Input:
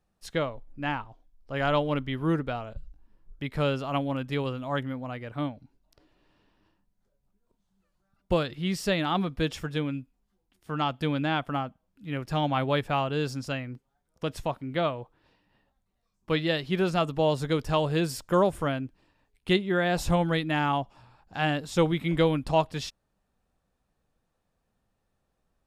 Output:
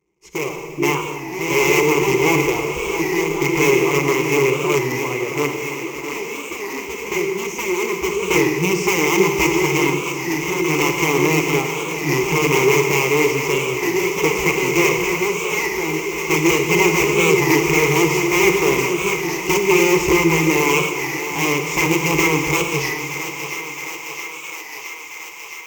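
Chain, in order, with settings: CVSD coder 64 kbps; in parallel at +0.5 dB: compression 6:1, threshold -33 dBFS, peak gain reduction 15 dB; on the sum: integer overflow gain 18.5 dB; level rider gain up to 11.5 dB; ever faster or slower copies 125 ms, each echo +3 st, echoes 3, each echo -6 dB; rippled EQ curve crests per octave 0.75, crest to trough 16 dB; on a send: thinning echo 667 ms, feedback 80%, high-pass 440 Hz, level -9 dB; on the sum: Schroeder reverb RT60 2.3 s, DRR 5 dB; dynamic bell 210 Hz, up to -5 dB, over -28 dBFS, Q 1.5; high-pass 43 Hz; small resonant body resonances 340/2100 Hz, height 15 dB, ringing for 20 ms; warped record 33 1/3 rpm, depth 100 cents; trim -12.5 dB

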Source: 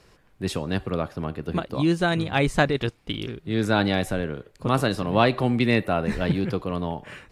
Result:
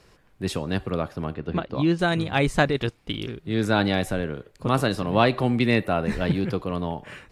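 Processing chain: 1.34–1.99 s: low-pass 4.2 kHz 12 dB/octave

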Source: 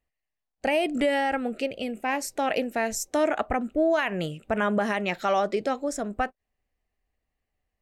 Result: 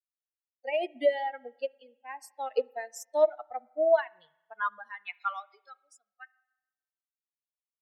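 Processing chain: expander on every frequency bin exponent 3; spring tank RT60 1 s, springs 30/54 ms, chirp 55 ms, DRR 17 dB; high-pass sweep 450 Hz -> 2.2 kHz, 2.94–6.28 s; upward expansion 1.5:1, over -41 dBFS

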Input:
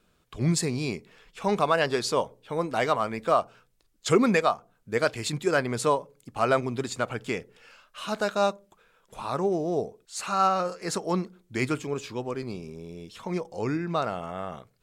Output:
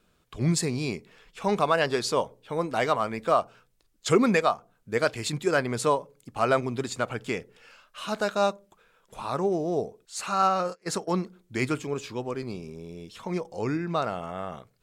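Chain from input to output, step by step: 10.42–11.20 s: gate -32 dBFS, range -22 dB

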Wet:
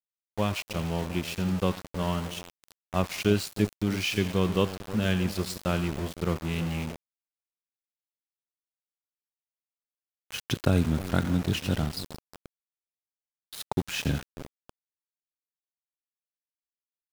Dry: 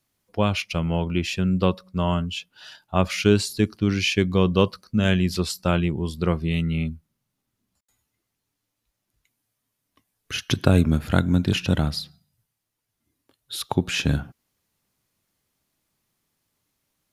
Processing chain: two-band feedback delay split 720 Hz, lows 312 ms, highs 88 ms, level -12.5 dB; small samples zeroed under -27 dBFS; trim -6 dB

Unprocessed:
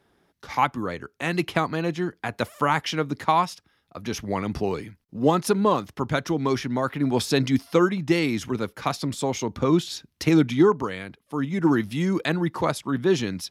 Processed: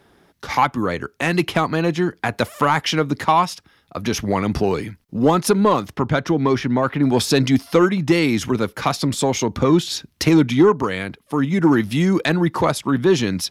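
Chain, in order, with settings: 5.96–7.03 s: treble shelf 5.4 kHz -12 dB; in parallel at +1 dB: compression, threshold -28 dBFS, peak gain reduction 14 dB; on the sum: saturation -7.5 dBFS, distortion -21 dB; trim +3.5 dB

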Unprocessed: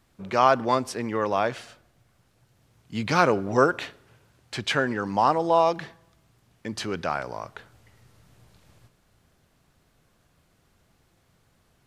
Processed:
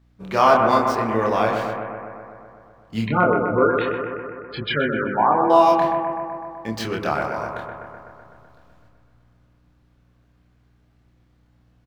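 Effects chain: median filter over 5 samples; de-hum 97.65 Hz, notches 30; 3.07–5.50 s: spectral gate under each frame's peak -10 dB strong; doubling 27 ms -2.5 dB; hum 60 Hz, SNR 26 dB; gate -43 dBFS, range -7 dB; bucket-brigade echo 126 ms, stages 2048, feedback 71%, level -5.5 dB; trim +2 dB

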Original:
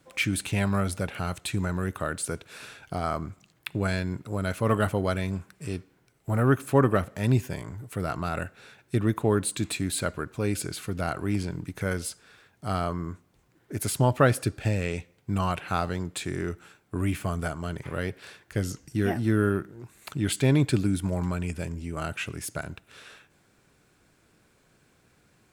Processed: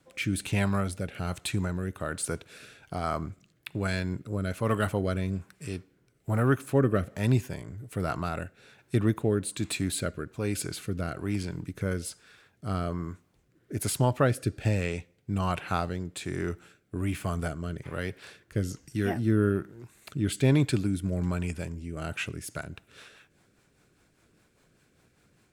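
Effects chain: rotary cabinet horn 1.2 Hz, later 5 Hz, at 21.96 s

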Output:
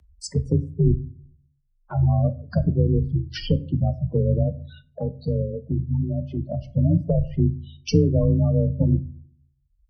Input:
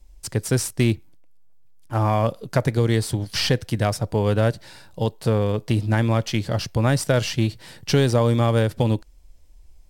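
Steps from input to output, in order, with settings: octave divider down 1 oct, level -2 dB; spectral noise reduction 19 dB; gate -52 dBFS, range -25 dB; spectral gate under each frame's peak -10 dB strong; low-pass that closes with the level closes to 470 Hz, closed at -18 dBFS; 4.43–6.69 s: bass shelf 410 Hz -5.5 dB; upward compressor, threshold -28 dBFS; frequency shift +25 Hz; simulated room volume 370 m³, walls furnished, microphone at 0.43 m

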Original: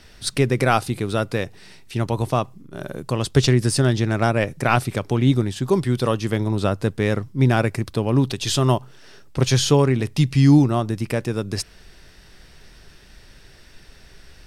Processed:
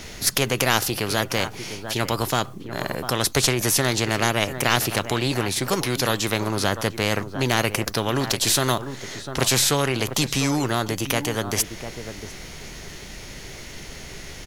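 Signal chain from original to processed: formant shift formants +3 st; echo from a far wall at 120 m, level -18 dB; spectrum-flattening compressor 2:1; trim +1 dB

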